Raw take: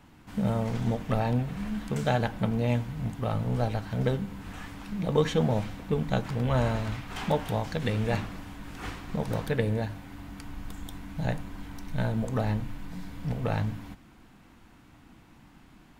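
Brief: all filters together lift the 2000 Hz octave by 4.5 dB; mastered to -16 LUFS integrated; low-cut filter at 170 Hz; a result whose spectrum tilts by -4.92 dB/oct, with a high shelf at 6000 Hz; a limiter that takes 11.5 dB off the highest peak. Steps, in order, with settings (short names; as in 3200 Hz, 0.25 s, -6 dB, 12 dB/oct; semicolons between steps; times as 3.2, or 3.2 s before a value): HPF 170 Hz; bell 2000 Hz +5 dB; high shelf 6000 Hz +7.5 dB; gain +18.5 dB; limiter -2 dBFS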